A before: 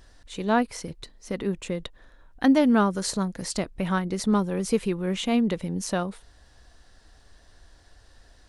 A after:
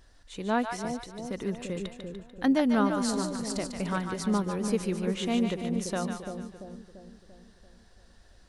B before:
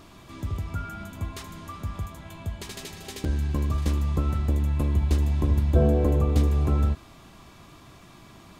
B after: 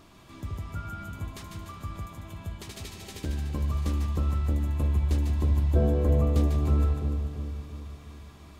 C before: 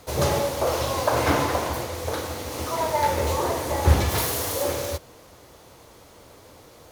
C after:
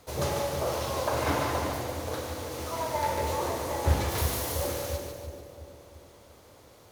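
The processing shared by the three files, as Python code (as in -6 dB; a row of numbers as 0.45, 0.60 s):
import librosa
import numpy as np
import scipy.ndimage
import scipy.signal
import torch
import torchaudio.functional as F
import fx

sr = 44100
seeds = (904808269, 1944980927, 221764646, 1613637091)

y = fx.echo_split(x, sr, split_hz=680.0, low_ms=341, high_ms=147, feedback_pct=52, wet_db=-5.5)
y = y * 10.0 ** (-12 / 20.0) / np.max(np.abs(y))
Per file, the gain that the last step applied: -5.0, -5.0, -7.0 dB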